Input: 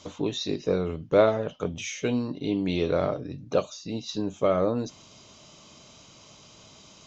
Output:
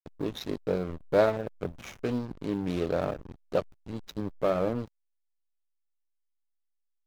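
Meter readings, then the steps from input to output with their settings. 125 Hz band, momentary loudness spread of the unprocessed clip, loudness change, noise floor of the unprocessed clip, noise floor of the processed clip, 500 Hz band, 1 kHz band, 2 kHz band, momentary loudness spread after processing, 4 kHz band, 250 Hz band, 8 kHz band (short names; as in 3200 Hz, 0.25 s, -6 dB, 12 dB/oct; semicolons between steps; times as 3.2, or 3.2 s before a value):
-3.5 dB, 10 LU, -3.5 dB, -52 dBFS, -78 dBFS, -3.5 dB, -3.0 dB, -3.0 dB, 13 LU, -9.0 dB, -4.5 dB, n/a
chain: block floating point 7-bit; backlash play -25.5 dBFS; Doppler distortion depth 0.15 ms; gain -2.5 dB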